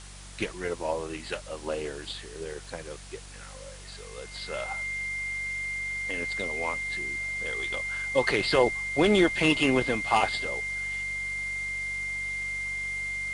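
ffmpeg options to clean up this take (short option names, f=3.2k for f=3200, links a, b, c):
-af "adeclick=t=4,bandreject=f=47.9:t=h:w=4,bandreject=f=95.8:t=h:w=4,bandreject=f=143.7:t=h:w=4,bandreject=f=191.6:t=h:w=4,bandreject=f=2.1k:w=30,afwtdn=0.005"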